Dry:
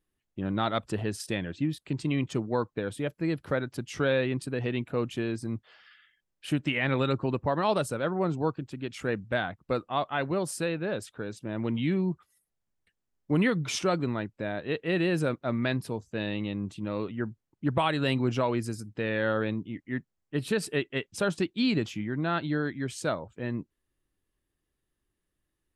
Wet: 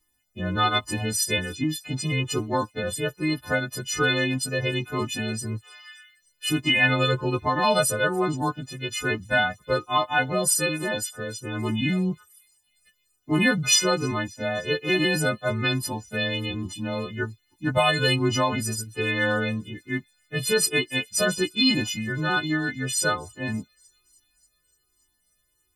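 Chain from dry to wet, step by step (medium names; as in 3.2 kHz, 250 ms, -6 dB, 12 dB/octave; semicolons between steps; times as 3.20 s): partials quantised in pitch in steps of 3 st; feedback echo behind a high-pass 290 ms, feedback 66%, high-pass 5.2 kHz, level -22 dB; Shepard-style flanger falling 1.2 Hz; trim +8.5 dB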